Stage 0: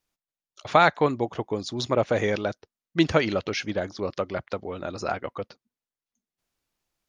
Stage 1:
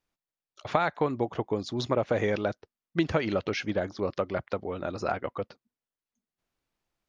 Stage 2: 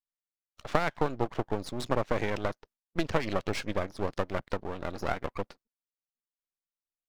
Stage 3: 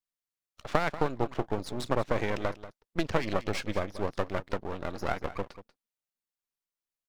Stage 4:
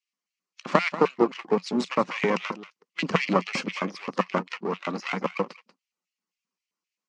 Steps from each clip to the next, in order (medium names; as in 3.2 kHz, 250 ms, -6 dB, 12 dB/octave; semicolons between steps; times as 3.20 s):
compression 6:1, threshold -21 dBFS, peak gain reduction 8.5 dB; treble shelf 4.4 kHz -10 dB
gate with hold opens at -46 dBFS; harmonic-percussive split harmonic -5 dB; half-wave rectifier; trim +2 dB
delay 188 ms -14.5 dB
coarse spectral quantiser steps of 15 dB; LFO high-pass square 3.8 Hz 230–2500 Hz; cabinet simulation 170–6800 Hz, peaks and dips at 180 Hz +9 dB, 280 Hz -4 dB, 640 Hz -6 dB, 1.1 kHz +6 dB, 1.6 kHz -4 dB, 3.6 kHz -8 dB; trim +7.5 dB